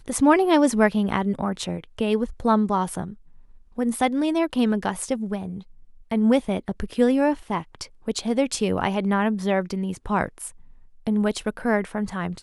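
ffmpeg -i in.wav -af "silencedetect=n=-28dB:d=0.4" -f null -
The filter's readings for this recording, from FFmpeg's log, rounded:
silence_start: 3.10
silence_end: 3.78 | silence_duration: 0.68
silence_start: 5.58
silence_end: 6.11 | silence_duration: 0.54
silence_start: 10.48
silence_end: 11.07 | silence_duration: 0.59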